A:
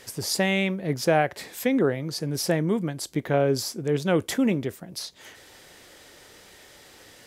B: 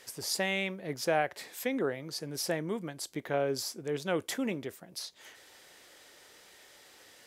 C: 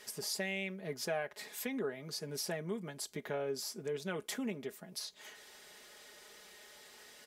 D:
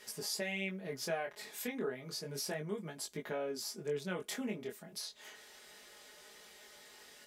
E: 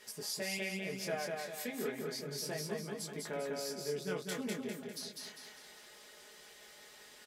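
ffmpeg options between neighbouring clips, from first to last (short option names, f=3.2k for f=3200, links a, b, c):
-af "lowshelf=f=250:g=-11.5,volume=-5.5dB"
-af "aecho=1:1:4.8:0.7,acompressor=threshold=-38dB:ratio=2,volume=-1.5dB"
-af "flanger=delay=18:depth=6.7:speed=0.31,volume=2.5dB"
-af "aecho=1:1:200|400|600|800|1000|1200:0.708|0.311|0.137|0.0603|0.0265|0.0117,volume=-1.5dB"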